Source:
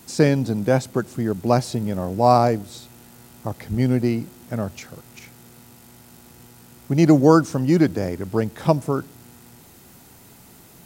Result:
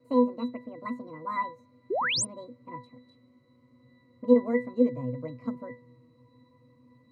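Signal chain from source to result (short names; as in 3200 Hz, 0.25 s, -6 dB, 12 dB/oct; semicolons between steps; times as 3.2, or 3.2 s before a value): speed glide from 179% -> 126%; octave resonator B, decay 0.23 s; painted sound rise, 1.9–2.25, 330–10000 Hz -30 dBFS; gain +2.5 dB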